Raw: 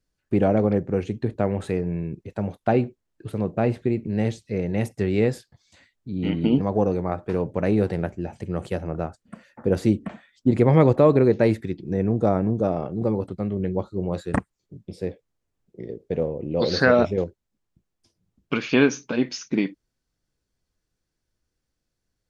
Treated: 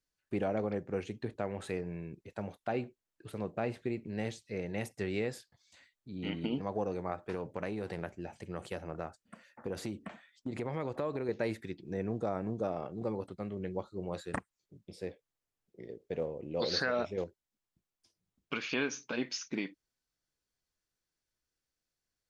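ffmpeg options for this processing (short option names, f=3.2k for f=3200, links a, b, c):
-filter_complex "[0:a]asettb=1/sr,asplit=3[a][b][c];[a]atrim=end=7.344[d];[b]atrim=start=7.34:end=11.29,asetpts=PTS-STARTPTS,afade=t=in:d=0.004:c=qsin,afade=t=out:st=3.946:d=0.004:c=qsin,acompressor=threshold=-20dB:ratio=6:attack=3.2:release=140:knee=1:detection=peak[e];[c]atrim=start=11.286[f];[d][e]acrossfade=d=0.004:c1=hsin:c2=qsin[g];[g][f]acrossfade=d=0.004:c1=qsin:c2=hsin,lowshelf=f=210:g=-3.5,alimiter=limit=-12.5dB:level=0:latency=1:release=191,tiltshelf=f=660:g=-4,volume=-8.5dB"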